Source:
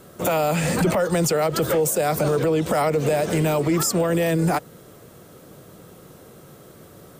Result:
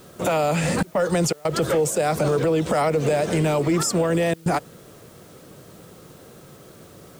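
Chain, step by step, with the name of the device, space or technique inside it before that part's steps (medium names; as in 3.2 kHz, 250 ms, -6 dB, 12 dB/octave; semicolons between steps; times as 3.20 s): worn cassette (low-pass 9.5 kHz 12 dB/octave; wow and flutter 27 cents; level dips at 0.83/1.33/4.34 s, 118 ms -27 dB; white noise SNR 32 dB)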